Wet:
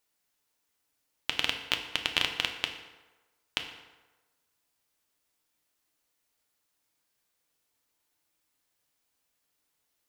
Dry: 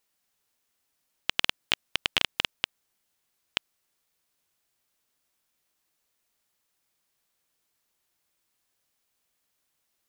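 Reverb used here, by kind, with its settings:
feedback delay network reverb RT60 1.2 s, low-frequency decay 0.8×, high-frequency decay 0.65×, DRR 4 dB
level −2.5 dB

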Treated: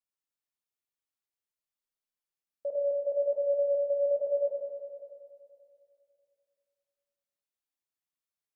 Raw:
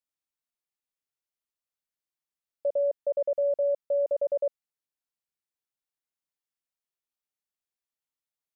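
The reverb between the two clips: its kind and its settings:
four-comb reverb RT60 2.5 s, combs from 28 ms, DRR −0.5 dB
level −6 dB

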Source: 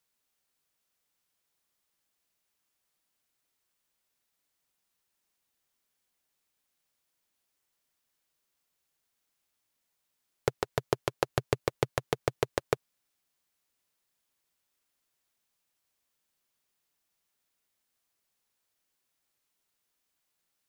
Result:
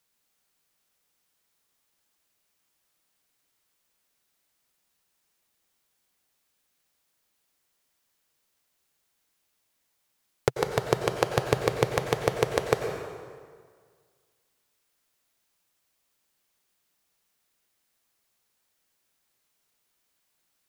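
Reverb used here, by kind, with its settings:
dense smooth reverb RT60 1.8 s, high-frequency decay 0.75×, pre-delay 80 ms, DRR 4.5 dB
level +4.5 dB

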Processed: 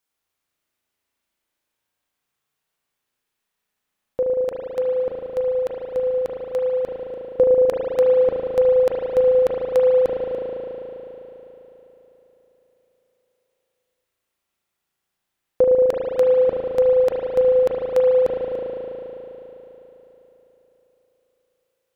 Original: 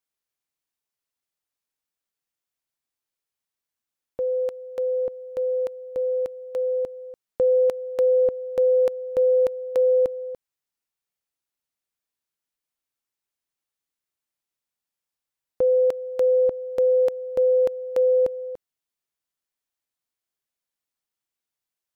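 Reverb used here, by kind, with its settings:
spring reverb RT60 3.9 s, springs 36 ms, chirp 45 ms, DRR −4 dB
level +6 dB

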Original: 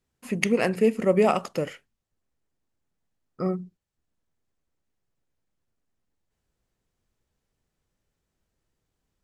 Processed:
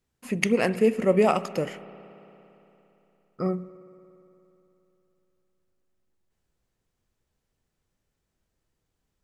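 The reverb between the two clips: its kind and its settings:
spring reverb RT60 3.3 s, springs 57 ms, chirp 55 ms, DRR 15.5 dB

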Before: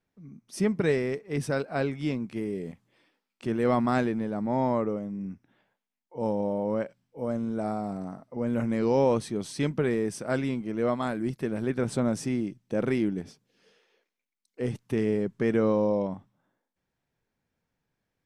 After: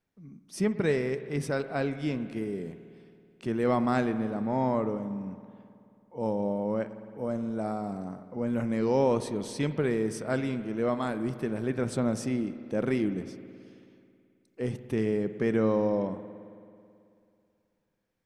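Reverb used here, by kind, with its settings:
spring reverb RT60 2.5 s, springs 54 ms, chirp 40 ms, DRR 11.5 dB
level −1.5 dB

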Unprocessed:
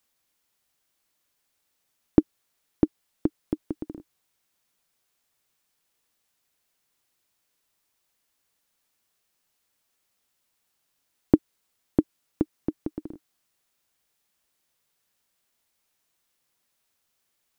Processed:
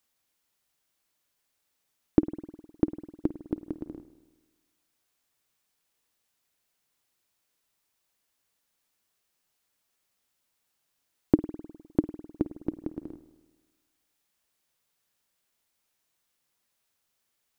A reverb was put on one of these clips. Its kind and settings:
spring reverb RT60 1.3 s, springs 51 ms, chirp 40 ms, DRR 12.5 dB
level −2.5 dB

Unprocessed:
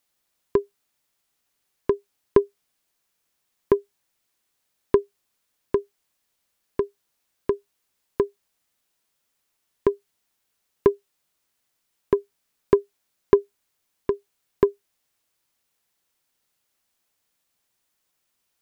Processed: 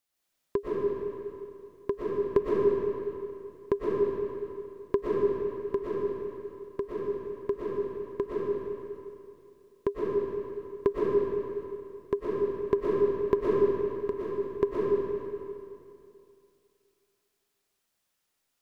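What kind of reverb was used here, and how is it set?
comb and all-pass reverb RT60 2.6 s, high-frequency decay 0.85×, pre-delay 80 ms, DRR −6 dB
level −8.5 dB

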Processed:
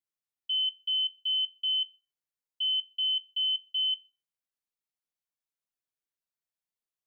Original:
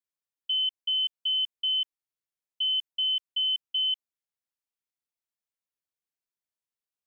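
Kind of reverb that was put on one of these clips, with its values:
rectangular room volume 370 cubic metres, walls furnished, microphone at 0.5 metres
level −3.5 dB

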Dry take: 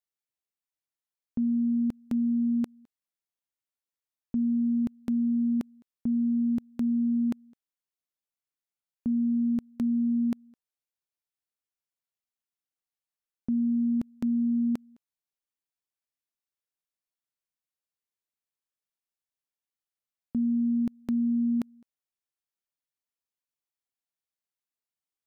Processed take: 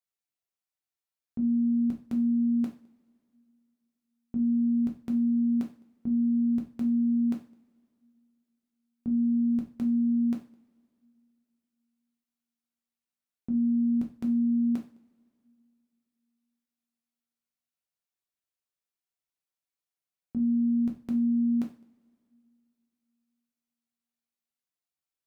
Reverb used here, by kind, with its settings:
coupled-rooms reverb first 0.36 s, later 2.7 s, from −27 dB, DRR 0 dB
level −4 dB

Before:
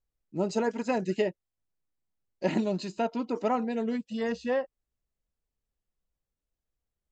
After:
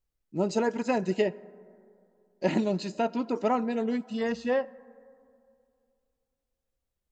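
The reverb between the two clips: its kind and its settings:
dense smooth reverb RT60 2.5 s, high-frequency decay 0.3×, DRR 19.5 dB
level +1.5 dB

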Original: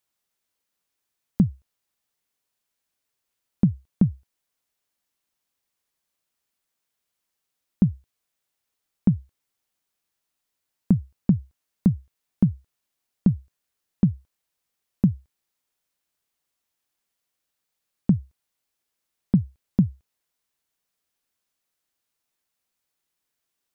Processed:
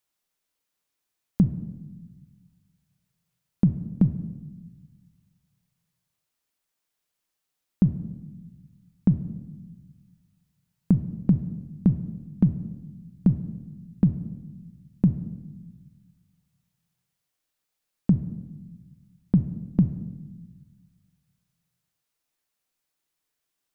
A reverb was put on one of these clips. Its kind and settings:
rectangular room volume 690 cubic metres, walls mixed, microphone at 0.48 metres
level −1 dB

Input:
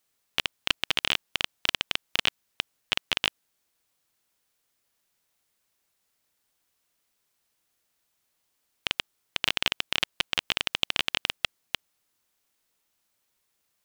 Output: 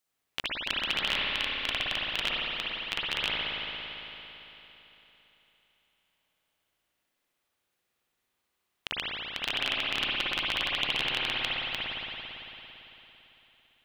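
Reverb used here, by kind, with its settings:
spring reverb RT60 3.6 s, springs 56 ms, chirp 40 ms, DRR −7 dB
level −7.5 dB

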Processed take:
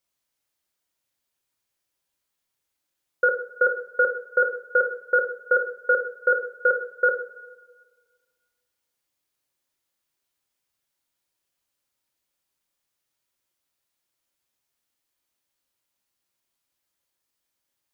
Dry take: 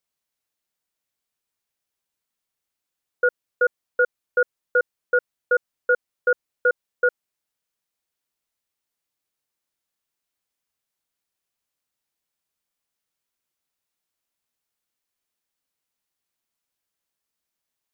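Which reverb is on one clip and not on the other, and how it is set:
coupled-rooms reverb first 0.58 s, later 1.7 s, from −16 dB, DRR 2.5 dB
level +1 dB

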